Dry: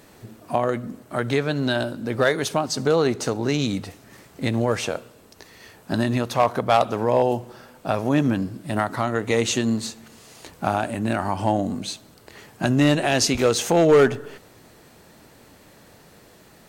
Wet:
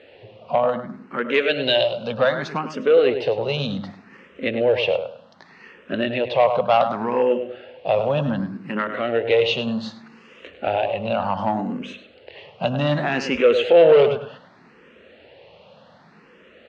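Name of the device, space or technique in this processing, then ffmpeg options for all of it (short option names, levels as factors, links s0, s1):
barber-pole phaser into a guitar amplifier: -filter_complex "[0:a]asettb=1/sr,asplit=3[s0][s1][s2];[s0]atrim=end=1.344[s3];[s1]atrim=start=1.34:end=2.12,asetpts=PTS-STARTPTS,afade=t=in:d=0.004:c=qsin,afade=t=out:st=0.776:d=0.004:c=qsin,highshelf=f=2200:g=11.5[s4];[s2]atrim=start=2.116[s5];[s3][s4]acrossfade=d=0.004:c1=hsin:c2=qsin[s6];[s6][s5]acrossfade=d=0.004:c1=qsin:c2=hsin,asplit=2[s7][s8];[s8]adelay=102,lowpass=f=2700:p=1,volume=0.355,asplit=2[s9][s10];[s10]adelay=102,lowpass=f=2700:p=1,volume=0.27,asplit=2[s11][s12];[s12]adelay=102,lowpass=f=2700:p=1,volume=0.27[s13];[s7][s9][s11][s13]amix=inputs=4:normalize=0,asplit=2[s14][s15];[s15]afreqshift=0.66[s16];[s14][s16]amix=inputs=2:normalize=1,asoftclip=type=tanh:threshold=0.224,highpass=110,equalizer=f=120:t=q:w=4:g=-7,equalizer=f=310:t=q:w=4:g=-7,equalizer=f=530:t=q:w=4:g=9,equalizer=f=2800:t=q:w=4:g=8,lowpass=f=3800:w=0.5412,lowpass=f=3800:w=1.3066,volume=1.41"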